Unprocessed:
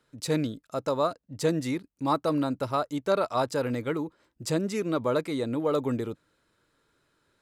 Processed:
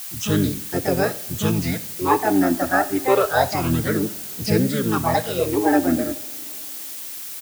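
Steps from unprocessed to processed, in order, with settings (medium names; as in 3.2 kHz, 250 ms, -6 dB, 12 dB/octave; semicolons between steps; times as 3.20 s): low-pass 6.5 kHz 24 dB/octave; harmony voices -7 st -4 dB, +5 st -2 dB; phase shifter stages 8, 0.29 Hz, lowest notch 130–1100 Hz; added noise blue -41 dBFS; on a send: reverberation, pre-delay 3 ms, DRR 11.5 dB; on the sum: trim +7.5 dB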